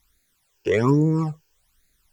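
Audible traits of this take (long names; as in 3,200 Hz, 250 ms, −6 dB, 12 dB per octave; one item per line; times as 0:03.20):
a quantiser's noise floor 12 bits, dither triangular
phaser sweep stages 12, 1.2 Hz, lowest notch 200–1,000 Hz
Opus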